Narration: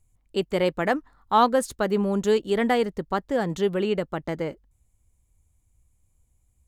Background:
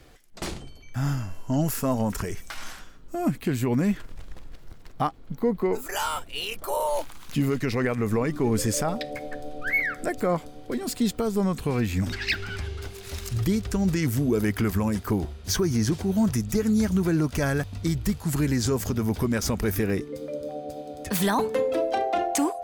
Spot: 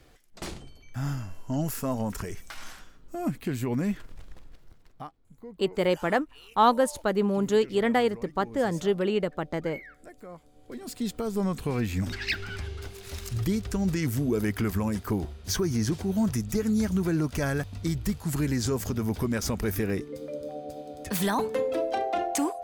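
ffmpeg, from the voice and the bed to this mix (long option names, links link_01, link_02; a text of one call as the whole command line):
ffmpeg -i stem1.wav -i stem2.wav -filter_complex "[0:a]adelay=5250,volume=-1.5dB[link_01];[1:a]volume=12.5dB,afade=type=out:start_time=4.19:duration=0.99:silence=0.16788,afade=type=in:start_time=10.42:duration=1.04:silence=0.141254[link_02];[link_01][link_02]amix=inputs=2:normalize=0" out.wav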